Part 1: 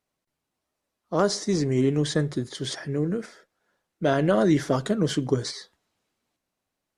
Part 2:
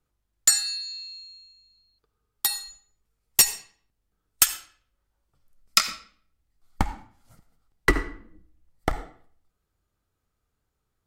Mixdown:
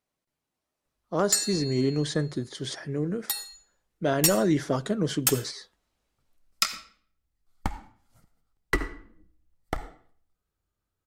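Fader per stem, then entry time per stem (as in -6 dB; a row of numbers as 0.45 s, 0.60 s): -3.0 dB, -5.5 dB; 0.00 s, 0.85 s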